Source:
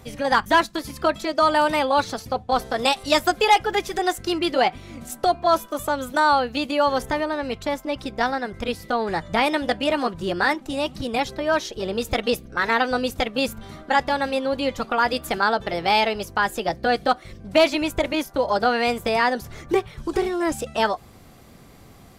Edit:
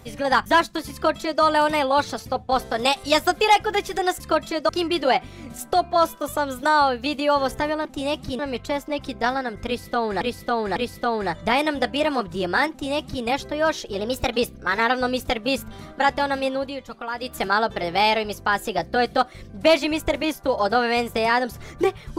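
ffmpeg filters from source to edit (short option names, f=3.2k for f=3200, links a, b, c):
-filter_complex "[0:a]asplit=11[a][b][c][d][e][f][g][h][i][j][k];[a]atrim=end=4.202[l];[b]atrim=start=0.928:end=1.422[m];[c]atrim=start=4.198:end=7.362[n];[d]atrim=start=10.568:end=11.112[o];[e]atrim=start=7.358:end=9.182[p];[f]atrim=start=8.628:end=9.182[q];[g]atrim=start=8.628:end=11.864[r];[h]atrim=start=11.86:end=12.27,asetpts=PTS-STARTPTS,asetrate=48069,aresample=44100,atrim=end_sample=16588,asetpts=PTS-STARTPTS[s];[i]atrim=start=12.266:end=14.67,asetpts=PTS-STARTPTS,afade=t=out:st=2.144:d=0.26:silence=0.334965[t];[j]atrim=start=14.67:end=15.07,asetpts=PTS-STARTPTS,volume=-9.5dB[u];[k]atrim=start=15.07,asetpts=PTS-STARTPTS,afade=t=in:d=0.26:silence=0.334965[v];[l][m]acrossfade=d=0.004:c1=hsin:c2=hsin[w];[w][n]acrossfade=d=0.004:c1=hsin:c2=hsin[x];[x][o]acrossfade=d=0.004:c1=hsin:c2=hsin[y];[y][p]acrossfade=d=0.004:c1=hsin:c2=hsin[z];[z][q]acrossfade=d=0.004:c1=hsin:c2=hsin[aa];[aa][r]acrossfade=d=0.004:c1=hsin:c2=hsin[ab];[ab][s]acrossfade=d=0.004:c1=hsin:c2=hsin[ac];[t][u][v]concat=n=3:v=0:a=1[ad];[ac][ad]acrossfade=d=0.004:c1=hsin:c2=hsin"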